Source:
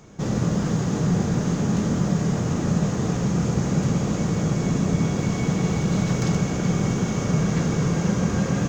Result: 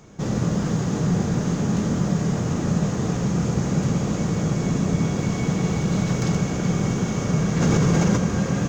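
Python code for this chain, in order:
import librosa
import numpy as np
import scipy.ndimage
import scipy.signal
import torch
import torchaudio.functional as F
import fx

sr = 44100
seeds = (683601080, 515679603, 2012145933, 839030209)

y = fx.env_flatten(x, sr, amount_pct=100, at=(7.6, 8.16), fade=0.02)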